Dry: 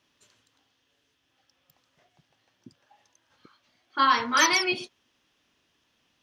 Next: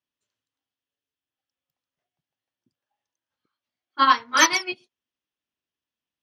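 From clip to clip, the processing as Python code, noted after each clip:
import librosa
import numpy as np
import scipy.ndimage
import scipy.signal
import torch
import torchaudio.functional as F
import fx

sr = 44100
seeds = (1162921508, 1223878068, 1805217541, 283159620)

y = fx.upward_expand(x, sr, threshold_db=-36.0, expansion=2.5)
y = y * librosa.db_to_amplitude(6.0)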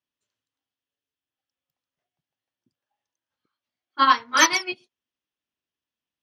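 y = x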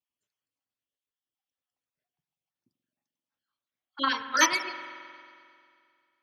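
y = fx.spec_dropout(x, sr, seeds[0], share_pct=32)
y = fx.rev_spring(y, sr, rt60_s=2.3, pass_ms=(44,), chirp_ms=80, drr_db=9.5)
y = y * librosa.db_to_amplitude(-4.5)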